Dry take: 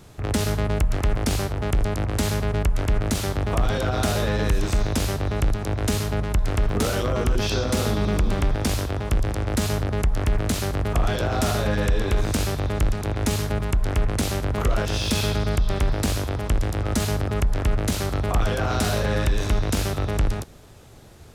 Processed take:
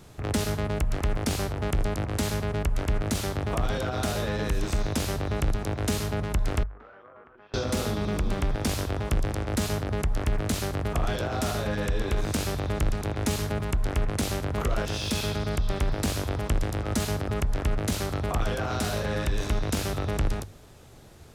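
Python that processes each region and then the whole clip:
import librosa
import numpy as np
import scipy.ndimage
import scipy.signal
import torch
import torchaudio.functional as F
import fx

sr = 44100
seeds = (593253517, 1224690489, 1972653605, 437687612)

y = fx.chain(x, sr, fx.lowpass(hz=1500.0, slope=24),
    fx.differentiator(), at=(6.63, 7.54))
y = fx.hum_notches(y, sr, base_hz=50, count=2)
y = fx.rider(y, sr, range_db=10, speed_s=0.5)
y = y * librosa.db_to_amplitude(-3.5)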